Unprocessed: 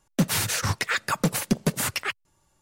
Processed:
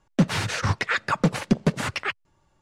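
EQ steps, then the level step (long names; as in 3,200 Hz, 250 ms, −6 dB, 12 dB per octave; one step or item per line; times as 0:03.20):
low-pass filter 3,500 Hz 6 dB per octave
high-frequency loss of the air 56 metres
+3.0 dB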